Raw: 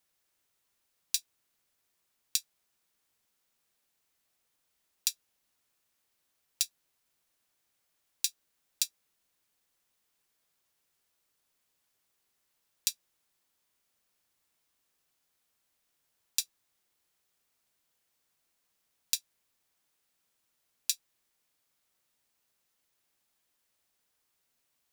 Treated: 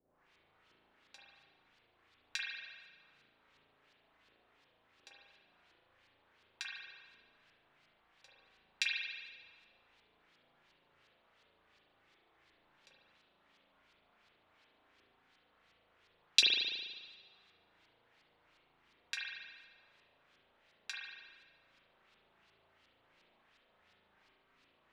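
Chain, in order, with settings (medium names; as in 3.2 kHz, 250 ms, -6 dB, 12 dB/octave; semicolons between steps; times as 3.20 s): LFO low-pass saw up 2.8 Hz 380–4400 Hz; spring tank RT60 1.4 s, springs 36 ms, chirp 40 ms, DRR -5 dB; trim +6.5 dB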